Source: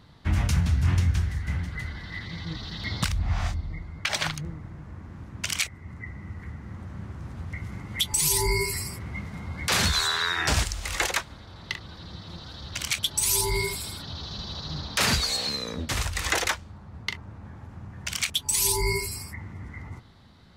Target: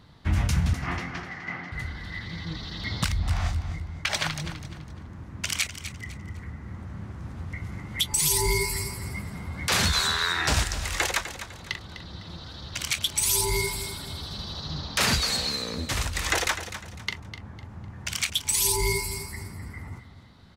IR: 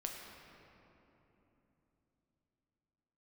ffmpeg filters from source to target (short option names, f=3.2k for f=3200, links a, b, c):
-filter_complex "[0:a]asettb=1/sr,asplit=3[a][b][c];[a]atrim=end=0.734[d];[b]atrim=start=0.73:end=1.72,asetpts=PTS-STARTPTS,afade=t=in:d=0.004:c=qsin,afade=t=out:st=0.986:d=0.004:c=qsin,highpass=f=180:w=0.5412,highpass=f=180:w=1.3066,equalizer=f=190:t=q:w=4:g=-4,equalizer=f=330:t=q:w=4:g=3,equalizer=f=740:t=q:w=4:g=9,equalizer=f=1.2k:t=q:w=4:g=8,equalizer=f=2k:t=q:w=4:g=7,equalizer=f=3.7k:t=q:w=4:g=-5,lowpass=f=5.1k:w=0.5412,lowpass=f=5.1k:w=1.3066[e];[c]atrim=start=1.716[f];[d][e]acrossfade=d=0.004:c1=hsin:c2=qsin[g];[g][f]acrossfade=d=0.004:c1=qsin:c2=hsin,asplit=2[h][i];[i]aecho=0:1:252|504|756:0.266|0.0851|0.0272[j];[h][j]amix=inputs=2:normalize=0"